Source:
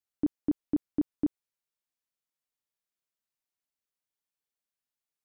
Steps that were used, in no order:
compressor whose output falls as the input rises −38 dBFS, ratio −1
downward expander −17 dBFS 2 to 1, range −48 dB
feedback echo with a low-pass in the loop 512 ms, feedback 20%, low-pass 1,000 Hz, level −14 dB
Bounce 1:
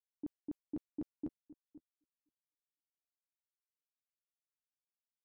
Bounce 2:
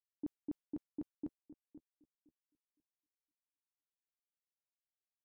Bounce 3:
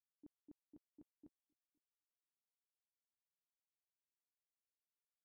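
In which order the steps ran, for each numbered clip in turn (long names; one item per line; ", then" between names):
feedback echo with a low-pass in the loop, then downward expander, then compressor whose output falls as the input rises
downward expander, then compressor whose output falls as the input rises, then feedback echo with a low-pass in the loop
compressor whose output falls as the input rises, then feedback echo with a low-pass in the loop, then downward expander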